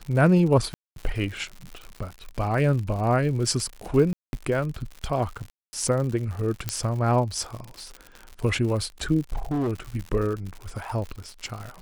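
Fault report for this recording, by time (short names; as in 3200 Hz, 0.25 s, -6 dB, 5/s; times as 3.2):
crackle 120/s -32 dBFS
0.74–0.96 gap 0.222 s
4.13–4.33 gap 0.201 s
5.5–5.73 gap 0.23 s
6.69 pop -9 dBFS
9.32–9.73 clipped -22.5 dBFS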